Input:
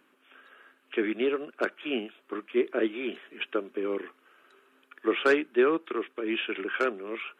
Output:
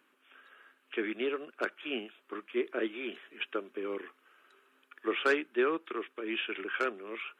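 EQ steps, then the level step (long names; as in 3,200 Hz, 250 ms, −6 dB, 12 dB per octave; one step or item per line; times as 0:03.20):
low-shelf EQ 360 Hz −7 dB
parametric band 640 Hz −2 dB
−2.5 dB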